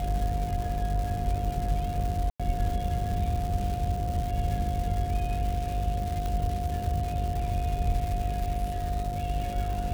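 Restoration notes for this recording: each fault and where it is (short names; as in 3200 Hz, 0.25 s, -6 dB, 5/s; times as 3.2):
buzz 50 Hz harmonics 12 -33 dBFS
crackle 390/s -33 dBFS
tone 710 Hz -33 dBFS
2.3–2.4 gap 96 ms
6.26 pop -19 dBFS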